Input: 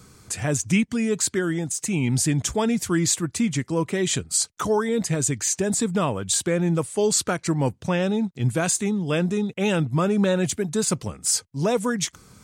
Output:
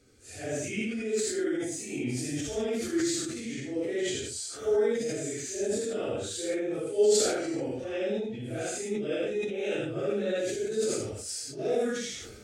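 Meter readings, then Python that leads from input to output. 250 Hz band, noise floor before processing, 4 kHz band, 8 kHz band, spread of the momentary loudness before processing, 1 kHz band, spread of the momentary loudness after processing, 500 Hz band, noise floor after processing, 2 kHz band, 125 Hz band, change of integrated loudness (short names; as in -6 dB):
-9.5 dB, -58 dBFS, -7.0 dB, -10.5 dB, 4 LU, -13.0 dB, 8 LU, -2.5 dB, -42 dBFS, -8.0 dB, -16.5 dB, -7.5 dB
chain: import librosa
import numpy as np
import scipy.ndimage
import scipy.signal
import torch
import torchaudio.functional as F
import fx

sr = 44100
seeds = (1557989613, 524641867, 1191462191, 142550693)

p1 = fx.phase_scramble(x, sr, seeds[0], window_ms=200)
p2 = fx.lowpass(p1, sr, hz=2300.0, slope=6)
p3 = fx.low_shelf(p2, sr, hz=98.0, db=-7.5)
p4 = fx.fixed_phaser(p3, sr, hz=420.0, stages=4)
p5 = p4 + fx.echo_single(p4, sr, ms=79, db=-3.5, dry=0)
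p6 = fx.sustainer(p5, sr, db_per_s=39.0)
y = F.gain(torch.from_numpy(p6), -5.0).numpy()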